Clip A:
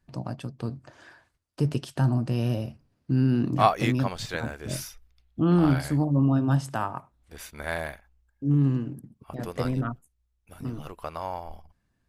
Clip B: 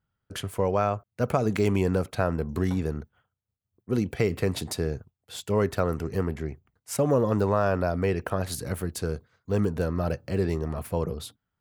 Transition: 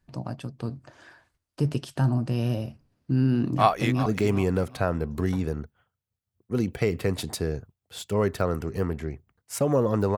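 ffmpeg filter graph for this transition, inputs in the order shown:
ffmpeg -i cue0.wav -i cue1.wav -filter_complex "[0:a]apad=whole_dur=10.17,atrim=end=10.17,atrim=end=4.062[link_01];[1:a]atrim=start=1.438:end=7.55[link_02];[link_01][link_02]acrossfade=duration=0.004:curve1=hsin:curve2=hsin,asplit=2[link_03][link_04];[link_04]afade=type=in:start_time=3.53:duration=0.01,afade=type=out:start_time=4.06:duration=0.01,aecho=0:1:370|740|1110:0.199526|0.0598579|0.0179574[link_05];[link_03][link_05]amix=inputs=2:normalize=0" out.wav

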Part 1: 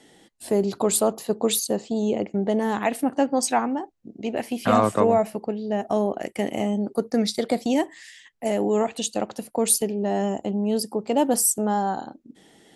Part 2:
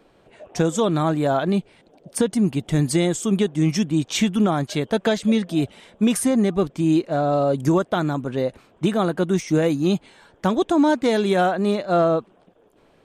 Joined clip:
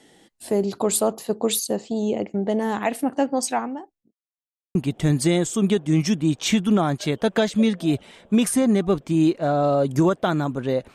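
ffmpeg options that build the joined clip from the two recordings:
ffmpeg -i cue0.wav -i cue1.wav -filter_complex "[0:a]apad=whole_dur=10.94,atrim=end=10.94,asplit=2[link_01][link_02];[link_01]atrim=end=4.13,asetpts=PTS-STARTPTS,afade=type=out:start_time=3.1:duration=1.03:curve=qsin[link_03];[link_02]atrim=start=4.13:end=4.75,asetpts=PTS-STARTPTS,volume=0[link_04];[1:a]atrim=start=2.44:end=8.63,asetpts=PTS-STARTPTS,afade=type=in:duration=0.004:curve=hsin[link_05];[link_03][link_04][link_05]concat=n=3:v=0:a=1" out.wav

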